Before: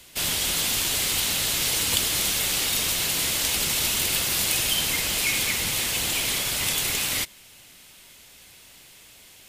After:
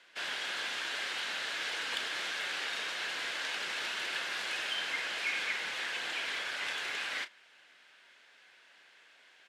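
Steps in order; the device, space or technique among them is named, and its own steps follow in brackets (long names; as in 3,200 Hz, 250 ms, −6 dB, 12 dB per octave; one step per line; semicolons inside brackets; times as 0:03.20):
megaphone (band-pass filter 470–3,300 Hz; parametric band 1,600 Hz +11 dB 0.43 octaves; hard clipping −15 dBFS, distortion −35 dB; double-tracking delay 33 ms −12 dB)
level −8 dB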